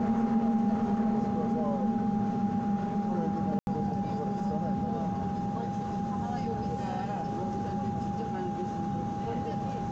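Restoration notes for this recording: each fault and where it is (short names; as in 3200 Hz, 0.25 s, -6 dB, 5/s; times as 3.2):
tone 810 Hz -35 dBFS
3.59–3.67 gap 81 ms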